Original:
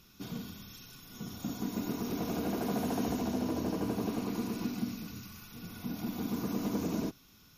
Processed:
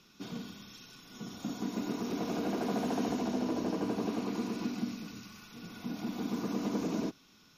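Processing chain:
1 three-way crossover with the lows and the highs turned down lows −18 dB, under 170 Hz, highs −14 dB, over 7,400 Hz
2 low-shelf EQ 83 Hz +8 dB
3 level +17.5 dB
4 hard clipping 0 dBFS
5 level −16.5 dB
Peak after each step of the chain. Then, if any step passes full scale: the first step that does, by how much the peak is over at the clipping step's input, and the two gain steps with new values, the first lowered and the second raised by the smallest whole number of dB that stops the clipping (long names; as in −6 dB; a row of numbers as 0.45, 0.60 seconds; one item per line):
−22.0, −21.5, −4.0, −4.0, −20.5 dBFS
no step passes full scale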